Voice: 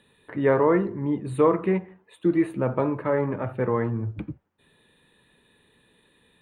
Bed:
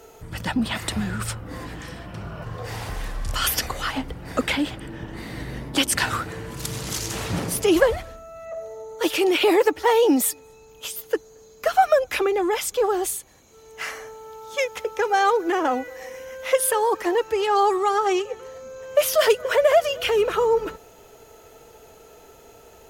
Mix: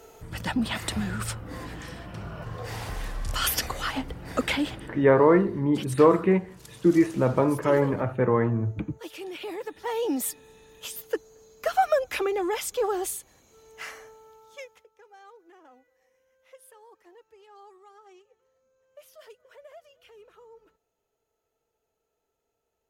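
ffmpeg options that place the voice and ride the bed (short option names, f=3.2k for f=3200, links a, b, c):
-filter_complex "[0:a]adelay=4600,volume=2dB[a];[1:a]volume=10dB,afade=t=out:st=4.76:d=0.39:silence=0.177828,afade=t=in:st=9.66:d=0.89:silence=0.223872,afade=t=out:st=13.47:d=1.4:silence=0.0446684[b];[a][b]amix=inputs=2:normalize=0"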